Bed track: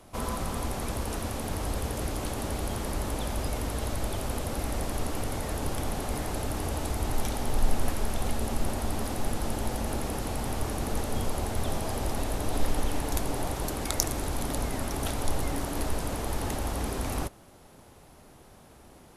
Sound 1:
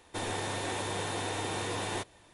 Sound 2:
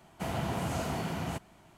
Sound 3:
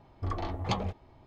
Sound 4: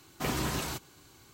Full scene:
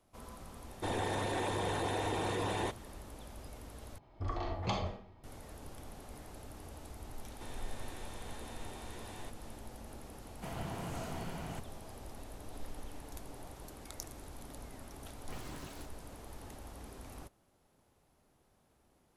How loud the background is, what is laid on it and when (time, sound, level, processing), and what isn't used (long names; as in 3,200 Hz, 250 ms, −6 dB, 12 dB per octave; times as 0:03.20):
bed track −18 dB
0:00.68: mix in 1 −0.5 dB + spectral envelope exaggerated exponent 1.5
0:03.98: overwrite with 3 −5.5 dB + comb and all-pass reverb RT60 0.52 s, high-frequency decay 0.85×, DRR 1 dB
0:07.27: mix in 1 −2 dB + downward compressor 3 to 1, threshold −50 dBFS
0:10.22: mix in 2 −8.5 dB
0:15.08: mix in 4 −16.5 dB + running median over 3 samples